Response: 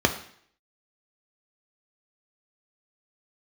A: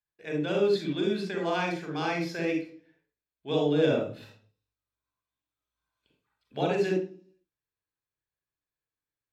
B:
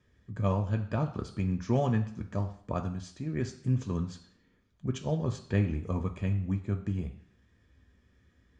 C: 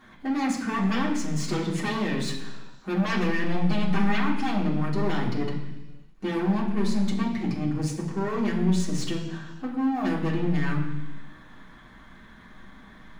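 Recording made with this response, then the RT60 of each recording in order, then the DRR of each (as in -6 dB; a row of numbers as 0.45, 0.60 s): B; 0.45 s, 0.60 s, not exponential; 0.5, 5.0, -5.5 dB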